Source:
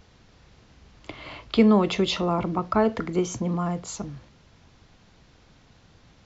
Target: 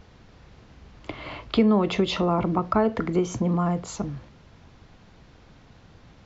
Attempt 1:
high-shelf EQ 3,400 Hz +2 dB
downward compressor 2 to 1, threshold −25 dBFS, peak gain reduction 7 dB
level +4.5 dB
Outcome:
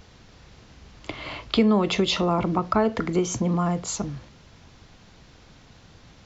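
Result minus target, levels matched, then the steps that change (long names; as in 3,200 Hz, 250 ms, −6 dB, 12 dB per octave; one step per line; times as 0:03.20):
8,000 Hz band +8.0 dB
change: high-shelf EQ 3,400 Hz −8.5 dB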